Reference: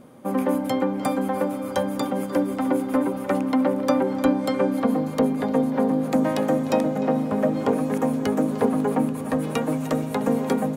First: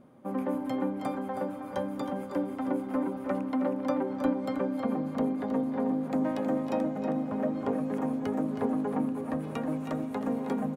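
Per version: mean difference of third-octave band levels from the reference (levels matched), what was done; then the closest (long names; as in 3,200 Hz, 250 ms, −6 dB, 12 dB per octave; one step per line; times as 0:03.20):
3.5 dB: high-shelf EQ 3,300 Hz −11 dB
notch filter 480 Hz, Q 12
on a send: single-tap delay 318 ms −8 dB
on the sum: level −8 dB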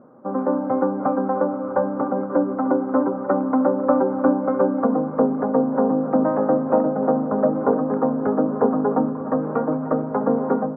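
8.0 dB: elliptic low-pass filter 1,400 Hz, stop band 70 dB
automatic gain control gain up to 3.5 dB
high-pass filter 260 Hz 6 dB per octave
level +1.5 dB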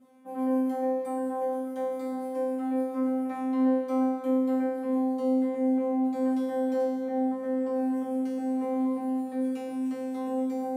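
12.5 dB: high-pass filter 53 Hz
reversed playback
upward compression, threshold −24 dBFS
reversed playback
tuned comb filter 260 Hz, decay 1.2 s, mix 100%
level +4.5 dB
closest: first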